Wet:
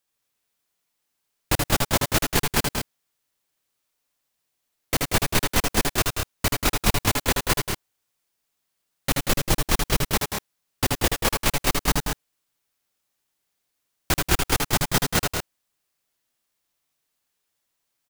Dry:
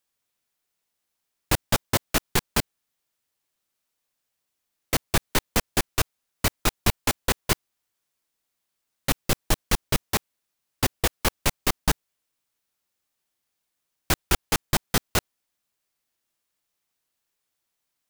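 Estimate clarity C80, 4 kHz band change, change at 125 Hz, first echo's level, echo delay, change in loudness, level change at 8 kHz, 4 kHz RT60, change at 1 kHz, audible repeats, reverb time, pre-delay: no reverb audible, +3.0 dB, +2.5 dB, −4.5 dB, 79 ms, +2.5 dB, +3.0 dB, no reverb audible, +3.0 dB, 2, no reverb audible, no reverb audible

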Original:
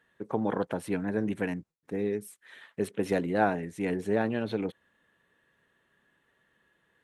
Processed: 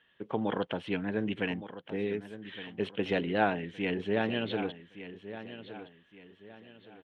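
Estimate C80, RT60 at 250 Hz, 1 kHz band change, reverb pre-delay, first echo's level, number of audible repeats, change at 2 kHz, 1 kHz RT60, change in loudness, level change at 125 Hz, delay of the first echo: no reverb audible, no reverb audible, −1.5 dB, no reverb audible, −13.0 dB, 3, +1.5 dB, no reverb audible, −2.5 dB, −2.0 dB, 1,166 ms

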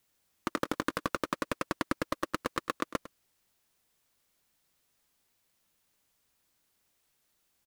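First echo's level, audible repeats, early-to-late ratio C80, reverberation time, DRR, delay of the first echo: −16.0 dB, 1, no reverb audible, no reverb audible, no reverb audible, 103 ms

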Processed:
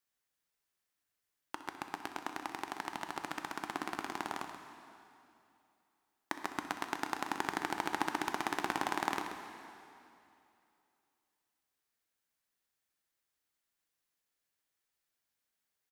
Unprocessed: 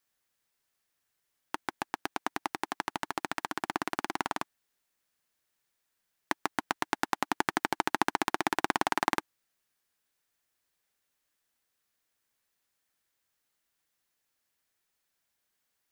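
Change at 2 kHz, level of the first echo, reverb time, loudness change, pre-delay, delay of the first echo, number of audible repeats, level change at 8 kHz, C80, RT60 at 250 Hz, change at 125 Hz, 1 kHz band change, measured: −5.5 dB, −15.0 dB, 2.7 s, −6.0 dB, 5 ms, 63 ms, 2, −5.5 dB, 5.5 dB, 2.7 s, −5.5 dB, −5.5 dB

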